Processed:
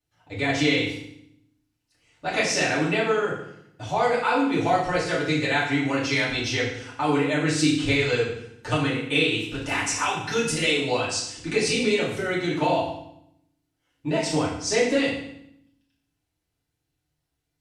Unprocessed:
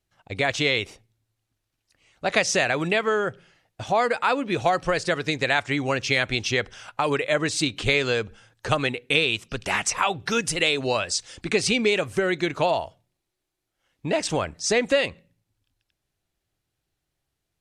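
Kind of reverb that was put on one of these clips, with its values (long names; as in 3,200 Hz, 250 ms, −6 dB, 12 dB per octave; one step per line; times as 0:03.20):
feedback delay network reverb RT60 0.73 s, low-frequency decay 1.5×, high-frequency decay 0.95×, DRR −8 dB
level −9.5 dB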